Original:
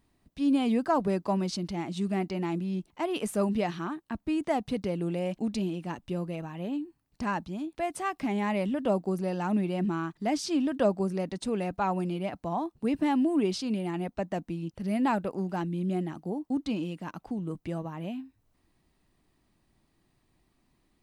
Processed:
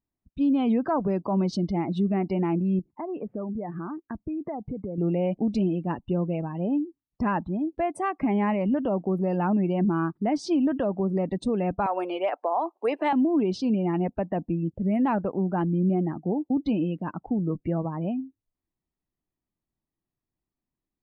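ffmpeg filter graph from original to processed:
ffmpeg -i in.wav -filter_complex "[0:a]asettb=1/sr,asplit=3[link_01][link_02][link_03];[link_01]atrim=end=2.794[link_04];[link_02]atrim=start=2.79:end=4.98,asetpts=PTS-STARTPTS,afade=type=in:duration=0.004:curve=qsin,afade=type=out:start_time=2.186:duration=0.004:curve=qsin,lowpass=frequency=2200:width=0.5412,lowpass=frequency=2200:width=1.3066,acompressor=threshold=-37dB:ratio=5:attack=3.2:release=140:knee=1:detection=peak[link_05];[link_03]atrim=start=4.976[link_06];[link_04][link_05]acrossfade=duration=0.004:curve1=hsin:curve2=qsin[link_07];[link_07][link_06]acrossfade=duration=0.004:curve1=qsin:curve2=hsin,asettb=1/sr,asplit=3[link_08][link_09][link_10];[link_08]atrim=end=11.864[link_11];[link_09]atrim=start=11.86:end=13.13,asetpts=PTS-STARTPTS,afade=type=in:duration=0.004:curve=qsin,afade=type=out:start_time=1.266:duration=0.004:curve=qsin,highpass=frequency=470:width=0.5412,highpass=frequency=470:width=1.3066,acontrast=84[link_12];[link_10]atrim=start=13.126[link_13];[link_11][link_12]acrossfade=duration=0.004:curve1=hsin:curve2=qsin[link_14];[link_14][link_13]acrossfade=duration=0.004:curve1=qsin:curve2=hsin,afftdn=noise_reduction=26:noise_floor=-44,highshelf=frequency=2500:gain=-12,alimiter=level_in=0.5dB:limit=-24dB:level=0:latency=1:release=124,volume=-0.5dB,volume=7.5dB" out.wav

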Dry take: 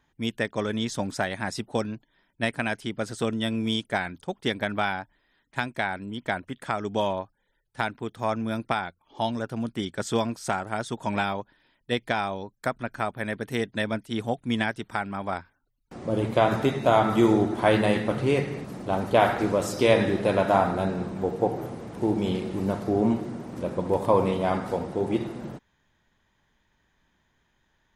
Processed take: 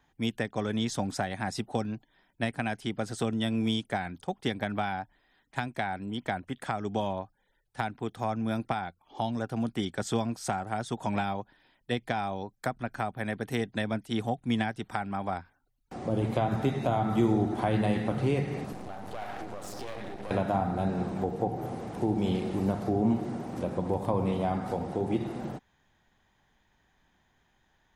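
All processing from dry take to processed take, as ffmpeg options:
ffmpeg -i in.wav -filter_complex "[0:a]asettb=1/sr,asplit=3[link_01][link_02][link_03];[link_01]atrim=end=18.724[link_04];[link_02]atrim=start=18.72:end=20.31,asetpts=PTS-STARTPTS,afade=type=in:duration=0.004:curve=qsin,afade=type=out:start_time=1.586:duration=0.004:curve=qsin,acompressor=threshold=-33dB:ratio=5:attack=3.2:release=140:knee=1:detection=peak,aeval=exprs='max(val(0),0)':channel_layout=same[link_05];[link_03]atrim=start=20.306[link_06];[link_04][link_05]acrossfade=duration=0.004:curve1=hsin:curve2=qsin[link_07];[link_07][link_06]acrossfade=duration=0.004:curve1=qsin:curve2=hsin,equalizer=frequency=760:width=7.5:gain=8.5,acrossover=split=250[link_08][link_09];[link_09]acompressor=threshold=-31dB:ratio=3[link_10];[link_08][link_10]amix=inputs=2:normalize=0" out.wav

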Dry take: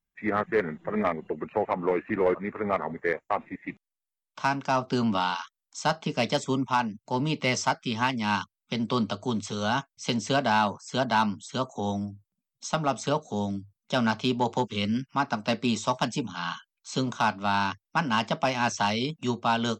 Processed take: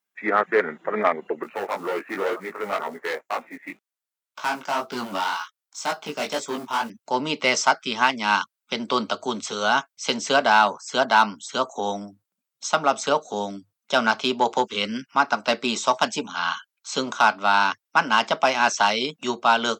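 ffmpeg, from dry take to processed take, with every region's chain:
ffmpeg -i in.wav -filter_complex "[0:a]asettb=1/sr,asplit=3[link_01][link_02][link_03];[link_01]atrim=end=1.434[link_04];[link_02]atrim=start=1.43:end=6.9,asetpts=PTS-STARTPTS,afade=type=in:duration=0.004:curve=qsin,afade=type=out:start_time=5.466:duration=0.004:curve=qsin,acrusher=bits=6:mode=log:mix=0:aa=0.000001,asoftclip=type=hard:threshold=-23.5dB,flanger=delay=16.5:depth=4.5:speed=2[link_05];[link_03]atrim=start=6.896[link_06];[link_04][link_05]acrossfade=duration=0.004:curve1=hsin:curve2=qsin[link_07];[link_07][link_06]acrossfade=duration=0.004:curve1=qsin:curve2=hsin,highpass=380,equalizer=frequency=1400:width=6.3:gain=4.5,volume=6.5dB" out.wav

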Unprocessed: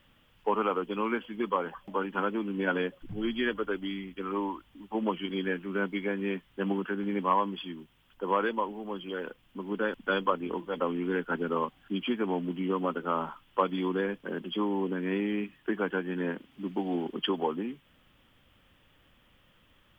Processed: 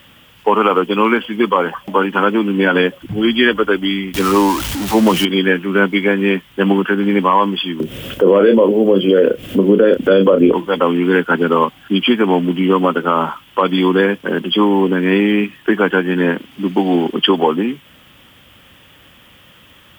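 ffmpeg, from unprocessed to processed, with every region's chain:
ffmpeg -i in.wav -filter_complex "[0:a]asettb=1/sr,asplit=3[link_01][link_02][link_03];[link_01]atrim=end=4.144[link_04];[link_02]atrim=start=4.14:end=5.25,asetpts=PTS-STARTPTS,afade=type=in:duration=0.004:curve=qsin,afade=type=out:start_time=1.106:duration=0.004:curve=qsin,aeval=exprs='val(0)+0.5*0.015*sgn(val(0))':channel_layout=same,lowshelf=frequency=110:gain=9[link_05];[link_03]atrim=start=5.246[link_06];[link_04][link_05]acrossfade=duration=0.004:curve1=hsin:curve2=qsin[link_07];[link_07][link_06]acrossfade=duration=0.004:curve1=qsin:curve2=hsin,asettb=1/sr,asplit=3[link_08][link_09][link_10];[link_08]atrim=end=7.804[link_11];[link_09]atrim=start=7.8:end=10.53,asetpts=PTS-STARTPTS,afade=type=in:duration=0.004:curve=qsin,afade=type=out:start_time=2.726:duration=0.004:curve=qsin,lowshelf=frequency=690:width_type=q:width=3:gain=8,acompressor=mode=upward:threshold=-28dB:ratio=2.5:attack=3.2:release=140:knee=2.83:detection=peak,asplit=2[link_12][link_13];[link_13]adelay=31,volume=-10dB[link_14];[link_12][link_14]amix=inputs=2:normalize=0,atrim=end_sample=120393[link_15];[link_10]atrim=start=10.526[link_16];[link_11][link_15]acrossfade=duration=0.004:curve1=hsin:curve2=qsin[link_17];[link_17][link_16]acrossfade=duration=0.004:curve1=qsin:curve2=hsin,highpass=65,highshelf=frequency=3000:gain=7,alimiter=level_in=17.5dB:limit=-1dB:release=50:level=0:latency=1,volume=-1dB" out.wav

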